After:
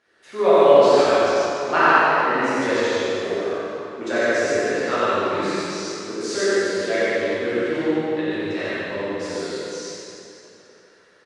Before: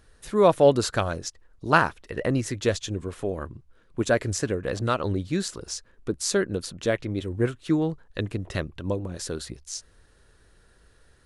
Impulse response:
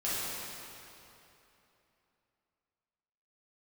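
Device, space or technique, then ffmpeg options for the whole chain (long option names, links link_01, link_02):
station announcement: -filter_complex "[0:a]highpass=350,lowpass=4800,equalizer=frequency=2100:width_type=o:width=0.36:gain=5.5,aecho=1:1:90.38|145.8:0.794|0.708[link_01];[1:a]atrim=start_sample=2205[link_02];[link_01][link_02]afir=irnorm=-1:irlink=0,volume=-3.5dB"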